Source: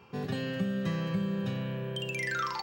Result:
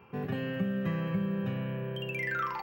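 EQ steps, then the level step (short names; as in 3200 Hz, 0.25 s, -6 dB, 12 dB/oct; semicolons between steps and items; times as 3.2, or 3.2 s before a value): band shelf 5900 Hz -15.5 dB; 0.0 dB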